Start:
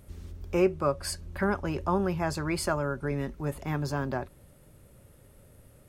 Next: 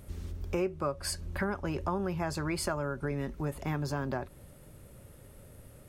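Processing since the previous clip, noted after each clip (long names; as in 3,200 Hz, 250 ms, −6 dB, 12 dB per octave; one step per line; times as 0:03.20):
downward compressor 3 to 1, threshold −34 dBFS, peak gain reduction 12 dB
level +3 dB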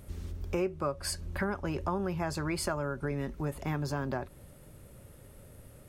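no processing that can be heard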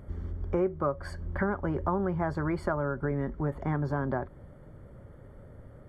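Savitzky-Golay smoothing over 41 samples
level +3.5 dB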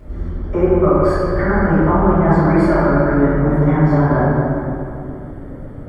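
convolution reverb RT60 2.7 s, pre-delay 3 ms, DRR −13.5 dB
level −1.5 dB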